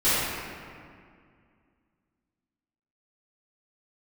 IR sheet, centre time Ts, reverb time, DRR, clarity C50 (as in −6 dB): 151 ms, 2.1 s, −17.5 dB, −4.5 dB